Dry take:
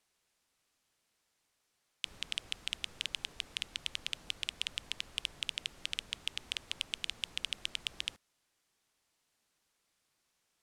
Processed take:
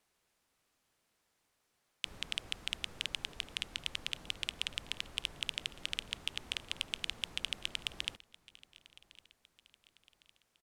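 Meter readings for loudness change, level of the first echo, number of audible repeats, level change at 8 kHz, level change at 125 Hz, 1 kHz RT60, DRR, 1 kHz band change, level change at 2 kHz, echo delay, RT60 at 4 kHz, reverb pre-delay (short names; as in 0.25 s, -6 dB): 0.0 dB, -21.0 dB, 2, -1.0 dB, +4.0 dB, none, none, +3.0 dB, +0.5 dB, 1.107 s, none, none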